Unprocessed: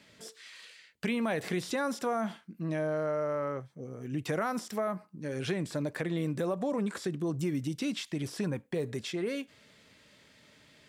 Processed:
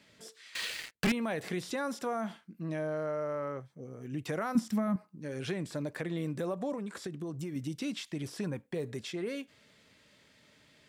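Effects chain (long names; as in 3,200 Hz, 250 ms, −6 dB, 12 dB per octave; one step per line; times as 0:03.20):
0:00.55–0:01.12: leveller curve on the samples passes 5
0:04.55–0:04.96: low shelf with overshoot 310 Hz +7.5 dB, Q 3
0:06.72–0:07.56: downward compressor, threshold −32 dBFS, peak gain reduction 5.5 dB
level −3 dB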